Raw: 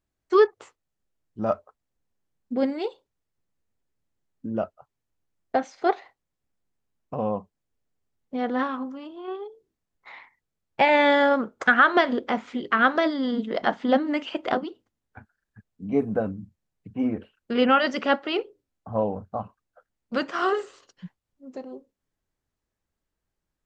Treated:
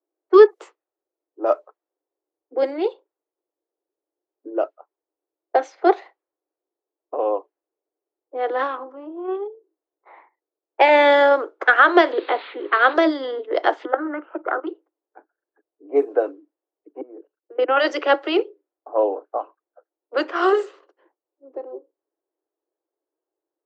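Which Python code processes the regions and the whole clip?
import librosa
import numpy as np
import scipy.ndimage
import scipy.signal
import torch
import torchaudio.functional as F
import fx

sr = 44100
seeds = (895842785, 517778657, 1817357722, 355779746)

y = fx.chain(x, sr, fx.crossing_spikes(level_db=-23.5),
    fx.steep_lowpass(hz=4300.0, slope=96), at=(12.12, 12.94))
y = fx.chain(y, sr, fx.level_steps(step_db=16),
    fx.lowpass_res(hz=1400.0, q=7.2), at=(13.85, 14.67))
y = fx.chain(y, sr, fx.high_shelf(hz=2200.0, db=-12.0),
    fx.level_steps(step_db=21), at=(17.01, 17.77))
y = scipy.signal.sosfilt(scipy.signal.butter(16, 310.0, 'highpass', fs=sr, output='sos'), y)
y = fx.env_lowpass(y, sr, base_hz=750.0, full_db=-20.5)
y = fx.low_shelf(y, sr, hz=480.0, db=8.0)
y = F.gain(torch.from_numpy(y), 3.0).numpy()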